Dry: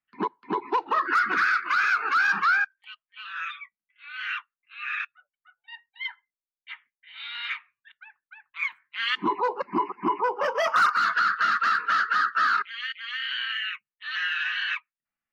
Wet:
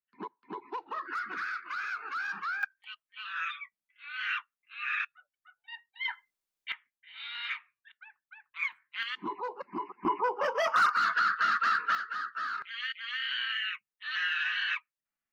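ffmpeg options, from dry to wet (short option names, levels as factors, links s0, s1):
-af "asetnsamples=n=441:p=0,asendcmd='2.63 volume volume -1.5dB;6.08 volume volume 6dB;6.72 volume volume -4dB;9.03 volume volume -11dB;10.05 volume volume -4dB;11.95 volume volume -12.5dB;12.62 volume volume -3dB',volume=0.224"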